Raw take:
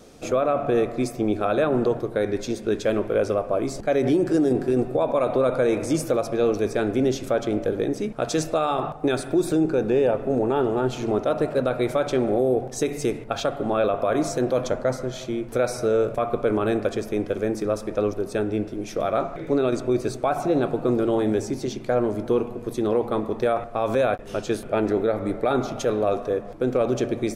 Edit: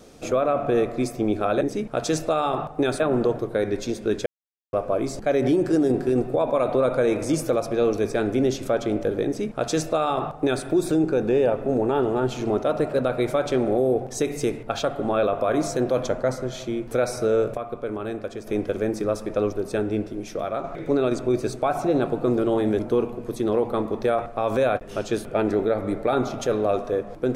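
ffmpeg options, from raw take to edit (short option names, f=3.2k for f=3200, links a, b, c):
-filter_complex "[0:a]asplit=9[a][b][c][d][e][f][g][h][i];[a]atrim=end=1.612[j];[b]atrim=start=7.858:end=9.252[k];[c]atrim=start=1.608:end=2.87,asetpts=PTS-STARTPTS,afade=t=out:st=1.258:d=0.004:c=hsin[l];[d]atrim=start=2.87:end=3.34,asetpts=PTS-STARTPTS,volume=0[m];[e]atrim=start=3.34:end=16.182,asetpts=PTS-STARTPTS,afade=t=in:d=0.004:c=hsin[n];[f]atrim=start=16.178:end=17.082,asetpts=PTS-STARTPTS,volume=-7.5dB[o];[g]atrim=start=17.078:end=19.25,asetpts=PTS-STARTPTS,afade=t=out:st=1.532:d=0.64:silence=0.501187[p];[h]atrim=start=19.25:end=21.402,asetpts=PTS-STARTPTS,afade=t=in:d=0.004:c=hsin:silence=0.501187[q];[i]atrim=start=22.168[r];[j][k]acrossfade=d=0.004:c1=hsin:c2=hsin[s];[l][m][n]concat=n=3:v=0:a=1[t];[s][t]acrossfade=d=0.004:c1=hsin:c2=hsin[u];[u][o]acrossfade=d=0.004:c1=hsin:c2=hsin[v];[p][q]concat=n=2:v=0:a=1[w];[v][w]acrossfade=d=0.004:c1=hsin:c2=hsin[x];[x][r]acrossfade=d=0.004:c1=hsin:c2=hsin"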